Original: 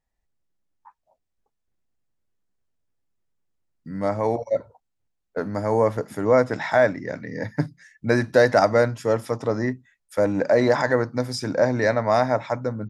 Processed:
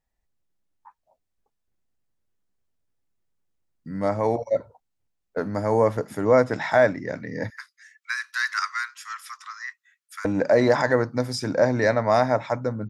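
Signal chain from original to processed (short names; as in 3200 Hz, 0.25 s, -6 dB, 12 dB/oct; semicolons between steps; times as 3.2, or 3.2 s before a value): 7.5–10.25 steep high-pass 1100 Hz 72 dB/oct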